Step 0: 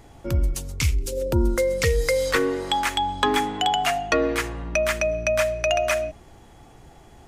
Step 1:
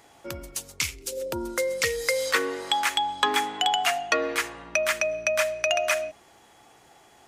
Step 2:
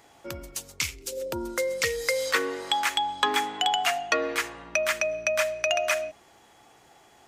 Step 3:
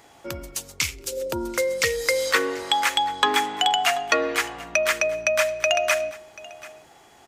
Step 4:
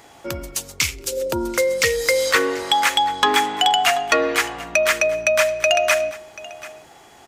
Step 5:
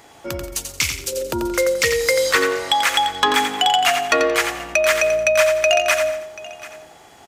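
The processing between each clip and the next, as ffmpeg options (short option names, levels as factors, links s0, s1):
-af "highpass=f=900:p=1,volume=1.12"
-af "equalizer=f=10000:w=2.7:g=-3,volume=0.891"
-af "aecho=1:1:736:0.1,volume=1.58"
-af "asoftclip=type=tanh:threshold=0.282,volume=1.78"
-af "aecho=1:1:88|176|264|352:0.447|0.13|0.0376|0.0109"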